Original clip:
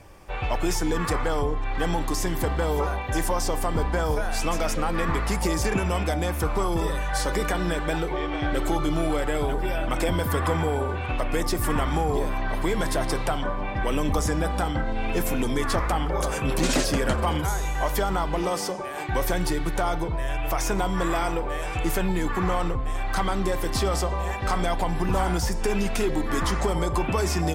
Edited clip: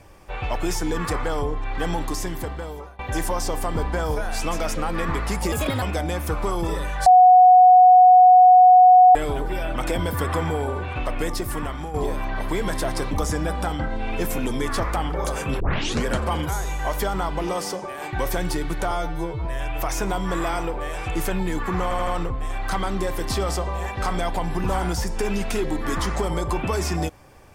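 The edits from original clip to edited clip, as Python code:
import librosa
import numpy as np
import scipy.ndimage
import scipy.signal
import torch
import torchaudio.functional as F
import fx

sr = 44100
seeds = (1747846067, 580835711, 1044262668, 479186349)

y = fx.edit(x, sr, fx.fade_out_to(start_s=2.04, length_s=0.95, floor_db=-24.0),
    fx.speed_span(start_s=5.52, length_s=0.43, speed=1.43),
    fx.bleep(start_s=7.19, length_s=2.09, hz=734.0, db=-7.5),
    fx.fade_out_to(start_s=11.32, length_s=0.75, floor_db=-9.5),
    fx.cut(start_s=13.24, length_s=0.83),
    fx.tape_start(start_s=16.56, length_s=0.45),
    fx.stretch_span(start_s=19.87, length_s=0.27, factor=2.0),
    fx.stutter(start_s=22.52, slice_s=0.08, count=4), tone=tone)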